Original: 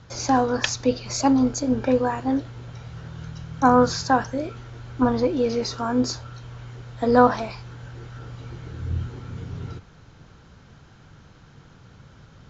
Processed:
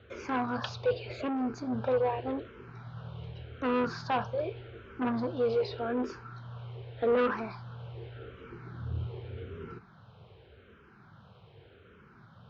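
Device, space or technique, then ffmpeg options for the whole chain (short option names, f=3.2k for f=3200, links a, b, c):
barber-pole phaser into a guitar amplifier: -filter_complex "[0:a]asplit=2[a][b];[b]afreqshift=-0.85[c];[a][c]amix=inputs=2:normalize=1,asoftclip=type=tanh:threshold=-22.5dB,highpass=93,equalizer=f=150:t=q:w=4:g=-7,equalizer=f=280:t=q:w=4:g=-9,equalizer=f=410:t=q:w=4:g=6,equalizer=f=860:t=q:w=4:g=-3,equalizer=f=1.9k:t=q:w=4:g=-5,lowpass=f=3.4k:w=0.5412,lowpass=f=3.4k:w=1.3066"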